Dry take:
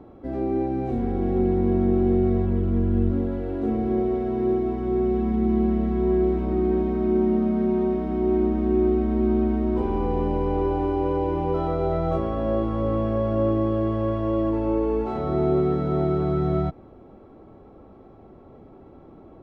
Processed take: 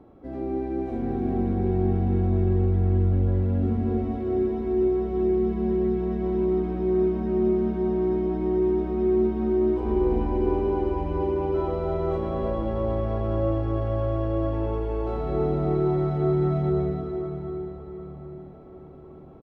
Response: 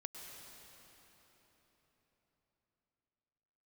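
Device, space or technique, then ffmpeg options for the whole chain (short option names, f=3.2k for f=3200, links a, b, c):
cave: -filter_complex "[0:a]aecho=1:1:312:0.376[a];[1:a]atrim=start_sample=2205[b];[a][b]afir=irnorm=-1:irlink=0,asettb=1/sr,asplit=3[c][d][e];[c]atrim=end=10.774[f];[d]atrim=start=10.77:end=11.21,asetpts=PTS-STARTPTS,afade=t=in:d=0.004:c=qsin,afade=t=out:st=0.436:d=0.004:c=qsin,asubboost=boost=11.5:cutoff=160[g];[e]atrim=start=11.206[h];[f][g]acrossfade=d=0.004:c1=hsin:c2=qsin[i];[i][h]acrossfade=d=0.004:c1=qsin:c2=hsin,asplit=2[j][k];[k]adelay=765,lowpass=f=3.3k:p=1,volume=-12dB,asplit=2[l][m];[m]adelay=765,lowpass=f=3.3k:p=1,volume=0.41,asplit=2[n][o];[o]adelay=765,lowpass=f=3.3k:p=1,volume=0.41,asplit=2[p][q];[q]adelay=765,lowpass=f=3.3k:p=1,volume=0.41[r];[j][l][n][p][r]amix=inputs=5:normalize=0"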